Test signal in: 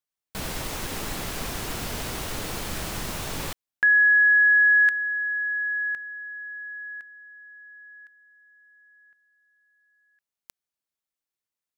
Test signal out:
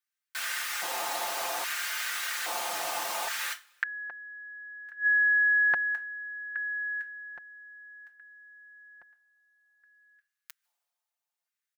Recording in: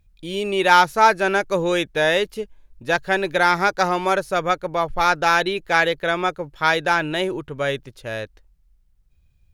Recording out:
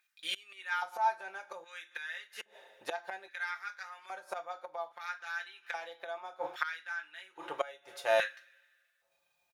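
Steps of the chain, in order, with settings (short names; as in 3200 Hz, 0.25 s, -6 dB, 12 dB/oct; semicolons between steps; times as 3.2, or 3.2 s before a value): low shelf 95 Hz +4.5 dB; two-slope reverb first 0.24 s, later 1.8 s, from -28 dB, DRR 4 dB; flipped gate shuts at -15 dBFS, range -25 dB; LFO high-pass square 0.61 Hz 770–1600 Hz; comb 5.7 ms, depth 60%; gain -3 dB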